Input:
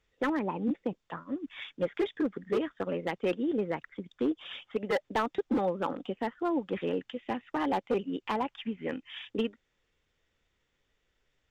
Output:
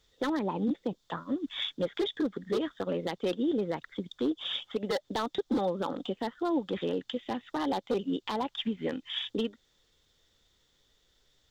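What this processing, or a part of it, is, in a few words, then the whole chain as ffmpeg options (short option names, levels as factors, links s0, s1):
over-bright horn tweeter: -af "highshelf=f=3100:t=q:w=3:g=6,alimiter=level_in=1.41:limit=0.0631:level=0:latency=1:release=171,volume=0.708,volume=1.78"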